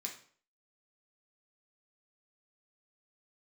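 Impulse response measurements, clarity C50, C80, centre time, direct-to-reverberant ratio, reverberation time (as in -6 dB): 8.0 dB, 13.0 dB, 19 ms, -1.0 dB, 0.50 s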